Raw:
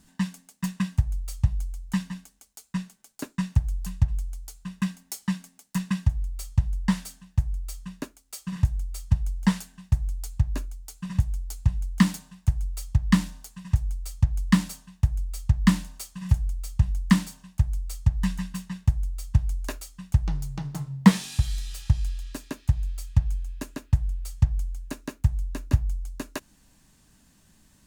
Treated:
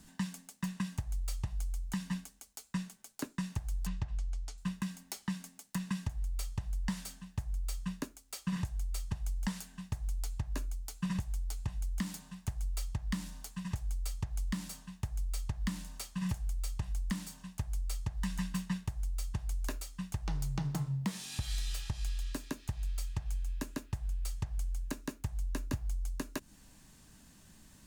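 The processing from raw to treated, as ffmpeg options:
ffmpeg -i in.wav -filter_complex "[0:a]asettb=1/sr,asplit=3[link_01][link_02][link_03];[link_01]atrim=end=3.874[link_04];[link_02]atrim=start=3.87:end=4.58,asetpts=PTS-STARTPTS,afade=type=in:duration=0.004:curve=qsin,afade=type=out:start_time=0.706:duration=0.004:curve=qsin,lowpass=5200[link_05];[link_03]atrim=start=4.576[link_06];[link_04][link_05]acrossfade=duration=0.004:curve1=hsin:curve2=qsin[link_07];[link_07][link_06]acrossfade=duration=0.004:curve1=qsin:curve2=hsin,acrossover=split=330|4500[link_08][link_09][link_10];[link_08]acompressor=threshold=-31dB:ratio=4[link_11];[link_09]acompressor=threshold=-41dB:ratio=4[link_12];[link_10]acompressor=threshold=-46dB:ratio=4[link_13];[link_11][link_12][link_13]amix=inputs=3:normalize=0,alimiter=level_in=1dB:limit=-24dB:level=0:latency=1:release=122,volume=-1dB,volume=1dB" out.wav

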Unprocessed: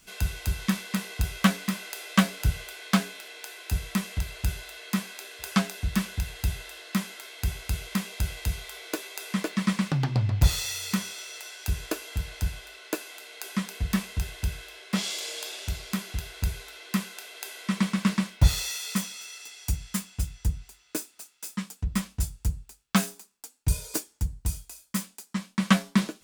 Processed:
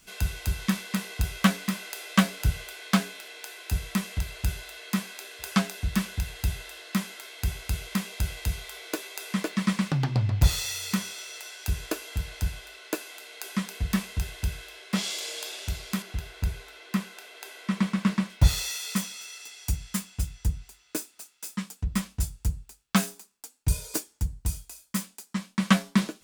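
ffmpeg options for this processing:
ffmpeg -i in.wav -filter_complex "[0:a]asettb=1/sr,asplit=3[link_01][link_02][link_03];[link_01]atrim=end=16.024[link_04];[link_02]atrim=start=16.02:end=18.3,asetpts=PTS-STARTPTS,afade=type=in:duration=0.004:curve=qsin,afade=type=out:start_time=2.276:duration=0.004:curve=qsin,highshelf=frequency=3400:gain=-7.5[link_05];[link_03]atrim=start=18.296[link_06];[link_04][link_05]acrossfade=duration=0.004:curve1=hsin:curve2=qsin[link_07];[link_07][link_06]acrossfade=duration=0.004:curve1=qsin:curve2=hsin" out.wav

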